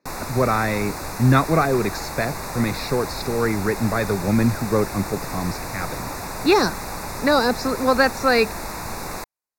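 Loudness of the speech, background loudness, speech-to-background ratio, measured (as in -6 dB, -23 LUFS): -22.0 LUFS, -30.5 LUFS, 8.5 dB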